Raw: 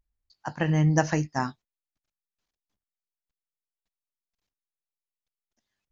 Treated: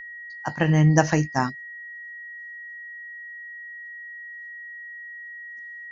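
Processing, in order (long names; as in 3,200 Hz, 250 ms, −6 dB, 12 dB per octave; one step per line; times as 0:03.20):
time-frequency box erased 0:01.49–0:03.36, 690–4,000 Hz
steady tone 1,900 Hz −41 dBFS
level +4.5 dB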